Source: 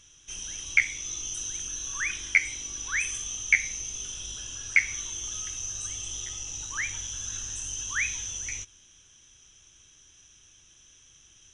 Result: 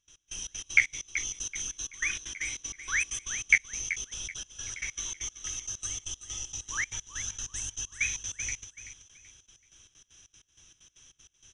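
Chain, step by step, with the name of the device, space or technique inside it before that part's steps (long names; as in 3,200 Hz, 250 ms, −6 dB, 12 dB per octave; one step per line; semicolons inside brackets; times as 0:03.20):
trance gate with a delay (gate pattern ".x..xx.x.xx" 193 BPM −24 dB; repeating echo 381 ms, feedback 32%, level −12 dB)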